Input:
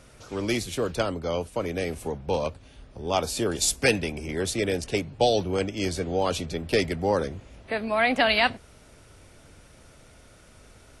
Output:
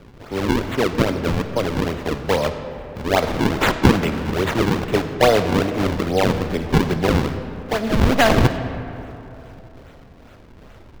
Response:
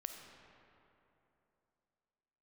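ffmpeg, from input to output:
-filter_complex "[0:a]acrusher=samples=40:mix=1:aa=0.000001:lfo=1:lforange=64:lforate=2.4,asplit=2[a][b];[1:a]atrim=start_sample=2205,lowpass=5.9k[c];[b][c]afir=irnorm=-1:irlink=0,volume=6dB[d];[a][d]amix=inputs=2:normalize=0"

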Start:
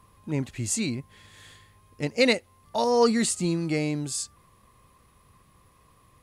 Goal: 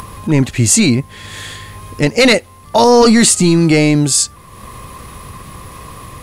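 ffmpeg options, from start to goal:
-af "acompressor=mode=upward:threshold=-41dB:ratio=2.5,apsyclip=22.5dB,volume=-4dB"

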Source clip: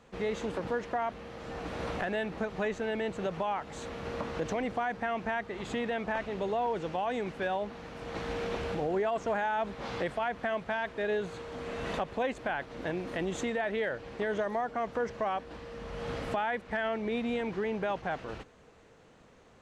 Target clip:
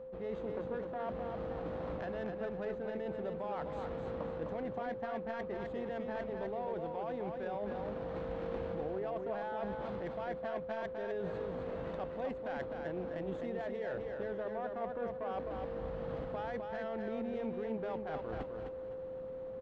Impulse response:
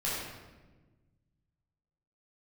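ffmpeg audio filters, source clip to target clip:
-af "areverse,acompressor=threshold=-44dB:ratio=6,areverse,aexciter=amount=1.6:drive=6.6:freq=3.3k,adynamicsmooth=sensitivity=4.5:basefreq=1.1k,aeval=exprs='val(0)+0.00316*sin(2*PI*520*n/s)':c=same,aecho=1:1:256|512|768|1024:0.562|0.169|0.0506|0.0152,volume=5.5dB"

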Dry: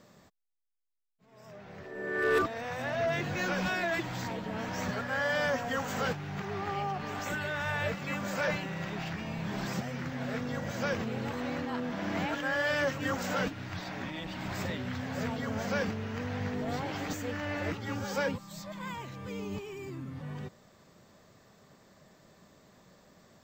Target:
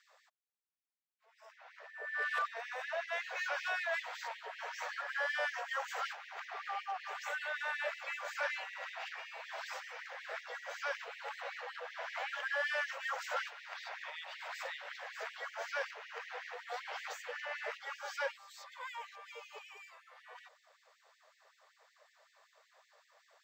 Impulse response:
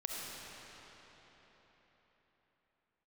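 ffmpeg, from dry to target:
-filter_complex "[0:a]asplit=2[a][b];[b]highpass=f=720:p=1,volume=8dB,asoftclip=type=tanh:threshold=-21dB[c];[a][c]amix=inputs=2:normalize=0,lowpass=f=2.6k:p=1,volume=-6dB,afftfilt=real='re*gte(b*sr/1024,420*pow(1800/420,0.5+0.5*sin(2*PI*5.3*pts/sr)))':imag='im*gte(b*sr/1024,420*pow(1800/420,0.5+0.5*sin(2*PI*5.3*pts/sr)))':win_size=1024:overlap=0.75,volume=-4dB"

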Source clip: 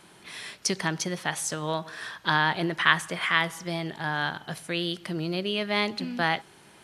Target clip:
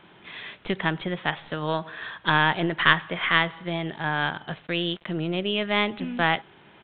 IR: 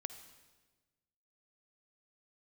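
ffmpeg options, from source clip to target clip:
-filter_complex "[0:a]aeval=exprs='0.708*(cos(1*acos(clip(val(0)/0.708,-1,1)))-cos(1*PI/2))+0.0447*(cos(6*acos(clip(val(0)/0.708,-1,1)))-cos(6*PI/2))':c=same,asettb=1/sr,asplit=3[a][b][c];[a]atrim=end=4.504[d];[b]atrim=start=4.5:end=5.11,asetpts=PTS-STARTPTS,afade=t=in:d=0.004:c=qsin,afade=t=out:st=0.606:d=0.004:c=qsin,aeval=exprs='val(0)*gte(abs(val(0)),0.00708)':c=same[e];[c]atrim=start=5.106[f];[d][e]acrossfade=d=0.004:c1=hsin:c2=qsin[g];[g][f]acrossfade=d=0.004:c1=qsin:c2=hsin,aresample=8000,aresample=44100,volume=2dB"

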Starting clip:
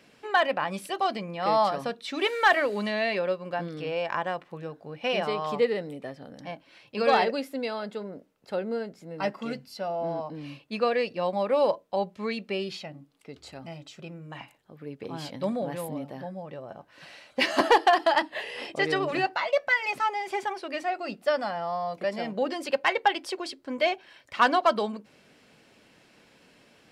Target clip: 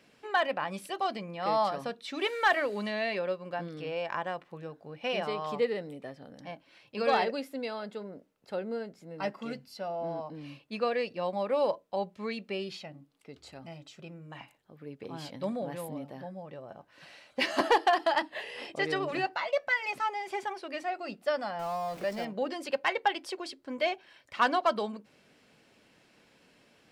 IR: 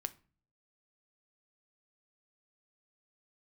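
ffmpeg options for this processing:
-filter_complex "[0:a]asettb=1/sr,asplit=3[a][b][c];[a]atrim=end=21.594[d];[b]atrim=start=21.59:end=22.25,asetpts=PTS-STARTPTS,afade=t=in:d=0.004:c=qsin,afade=t=out:st=0.656:d=0.004:c=qsin,aeval=exprs='val(0)+0.5*0.0133*sgn(val(0))':c=same[e];[c]atrim=start=22.246[f];[d][e]acrossfade=d=0.004:c1=hsin:c2=qsin[g];[g][f]acrossfade=d=0.004:c1=qsin:c2=hsin,volume=-4.5dB"

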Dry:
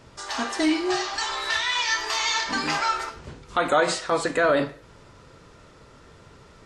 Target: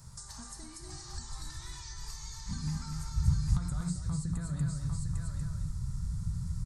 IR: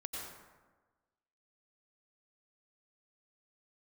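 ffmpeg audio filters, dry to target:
-filter_complex "[0:a]acompressor=threshold=-28dB:ratio=6,firequalizer=gain_entry='entry(170,0);entry(270,-22);entry(620,-20);entry(920,-10);entry(2900,-21);entry(4200,-5);entry(8600,9)':delay=0.05:min_phase=1,asplit=2[a][b];[b]aecho=0:1:801:0.299[c];[a][c]amix=inputs=2:normalize=0,asubboost=boost=9.5:cutoff=170,asplit=2[d][e];[e]aecho=0:1:239:0.531[f];[d][f]amix=inputs=2:normalize=0,acrossover=split=430[g][h];[h]acompressor=threshold=-48dB:ratio=6[i];[g][i]amix=inputs=2:normalize=0,volume=2dB"

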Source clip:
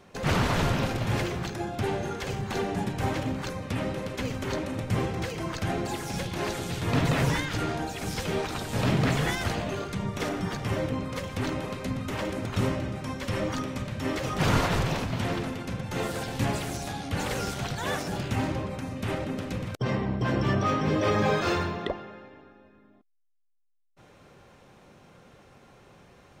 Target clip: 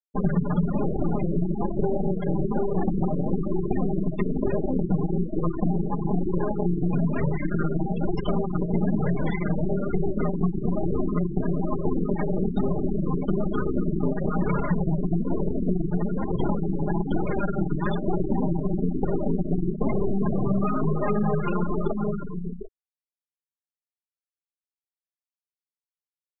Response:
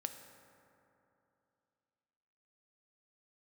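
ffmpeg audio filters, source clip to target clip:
-filter_complex "[0:a]aecho=1:1:4.9:0.93,acrusher=bits=6:mix=0:aa=0.000001,lowpass=11k,equalizer=f=170:w=2.4:g=12.5,aeval=exprs='0.422*(cos(1*acos(clip(val(0)/0.422,-1,1)))-cos(1*PI/2))+0.00266*(cos(2*acos(clip(val(0)/0.422,-1,1)))-cos(2*PI/2))+0.075*(cos(8*acos(clip(val(0)/0.422,-1,1)))-cos(8*PI/2))':c=same,asplit=2[a][b];[b]aecho=0:1:746:0.178[c];[a][c]amix=inputs=2:normalize=0,flanger=delay=1.7:depth=5.5:regen=-25:speed=1.1:shape=triangular,bandreject=f=50:t=h:w=6,bandreject=f=100:t=h:w=6,bandreject=f=150:t=h:w=6,bandreject=f=200:t=h:w=6,bandreject=f=250:t=h:w=6,bandreject=f=300:t=h:w=6,bandreject=f=350:t=h:w=6,acompressor=threshold=-25dB:ratio=20,adynamicequalizer=threshold=0.00447:dfrequency=310:dqfactor=1.8:tfrequency=310:tqfactor=1.8:attack=5:release=100:ratio=0.375:range=2:mode=boostabove:tftype=bell,afftfilt=real='re*gte(hypot(re,im),0.0501)':imag='im*gte(hypot(re,im),0.0501)':win_size=1024:overlap=0.75,volume=6.5dB"

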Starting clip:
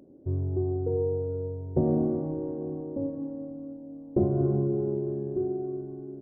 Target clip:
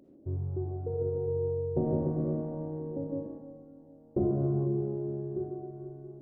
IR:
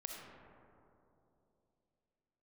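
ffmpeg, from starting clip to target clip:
-filter_complex "[0:a]asettb=1/sr,asplit=3[a][b][c];[a]atrim=end=0.854[d];[b]atrim=start=0.85:end=3.27,asetpts=PTS-STARTPTS,afade=t=in:d=0.004:c=qsin,afade=t=out:st=2.416:d=0.004:c=qsin,aecho=1:1:160|296|411.6|509.9|593.4:0.631|0.398|0.251|0.158|0.1,atrim=end_sample=106722[e];[c]atrim=start=3.266[f];[d][e]acrossfade=d=0.004:c1=hsin:c2=qsin[g];[g][f]acrossfade=d=0.004:c1=qsin:c2=hsin[h];[1:a]atrim=start_sample=2205,afade=t=out:st=0.2:d=0.01,atrim=end_sample=9261[i];[h][i]afir=irnorm=-1:irlink=0"

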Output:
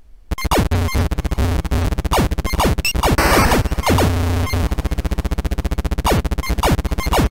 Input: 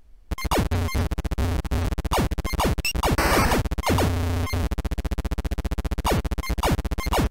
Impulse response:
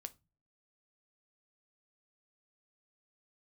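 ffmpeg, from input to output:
-filter_complex "[0:a]asplit=5[a][b][c][d][e];[b]adelay=410,afreqshift=38,volume=-23dB[f];[c]adelay=820,afreqshift=76,volume=-27.3dB[g];[d]adelay=1230,afreqshift=114,volume=-31.6dB[h];[e]adelay=1640,afreqshift=152,volume=-35.9dB[i];[a][f][g][h][i]amix=inputs=5:normalize=0,volume=6.5dB"

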